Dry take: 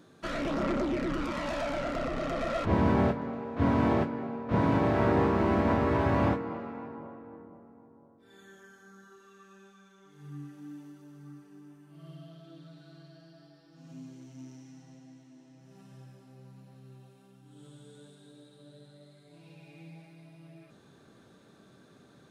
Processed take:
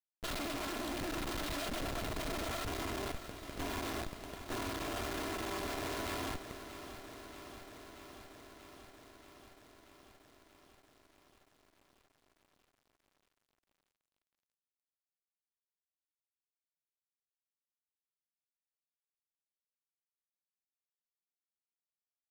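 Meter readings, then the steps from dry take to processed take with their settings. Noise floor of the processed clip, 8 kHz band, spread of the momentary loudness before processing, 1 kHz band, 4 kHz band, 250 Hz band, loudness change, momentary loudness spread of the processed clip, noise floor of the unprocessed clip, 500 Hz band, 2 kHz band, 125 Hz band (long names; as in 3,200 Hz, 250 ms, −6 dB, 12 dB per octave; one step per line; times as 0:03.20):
below −85 dBFS, can't be measured, 22 LU, −10.5 dB, +3.0 dB, −14.5 dB, −11.0 dB, 17 LU, −59 dBFS, −12.5 dB, −5.5 dB, −15.5 dB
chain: lower of the sound and its delayed copy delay 2.9 ms
parametric band 4,000 Hz +14.5 dB 0.91 octaves
hum removal 133 Hz, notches 8
downward compressor 2 to 1, threshold −48 dBFS, peak gain reduction 14 dB
harmonic generator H 4 −10 dB, 5 −38 dB, 6 −41 dB, 7 −17 dB, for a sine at −27.5 dBFS
comparator with hysteresis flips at −51.5 dBFS
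single-tap delay 196 ms −21 dB
feedback echo at a low word length 633 ms, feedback 80%, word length 12 bits, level −12 dB
level +8.5 dB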